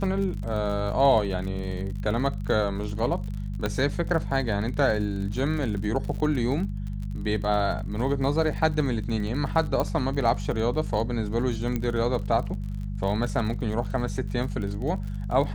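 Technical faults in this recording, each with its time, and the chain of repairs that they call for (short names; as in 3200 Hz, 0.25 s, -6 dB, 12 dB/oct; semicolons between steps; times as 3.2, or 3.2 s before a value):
crackle 48/s -33 dBFS
hum 50 Hz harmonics 4 -31 dBFS
3.66 pop -13 dBFS
9.8 pop -14 dBFS
11.76 pop -15 dBFS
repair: de-click; de-hum 50 Hz, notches 4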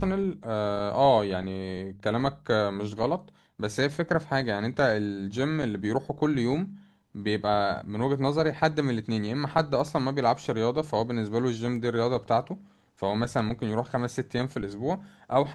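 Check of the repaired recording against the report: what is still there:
9.8 pop
11.76 pop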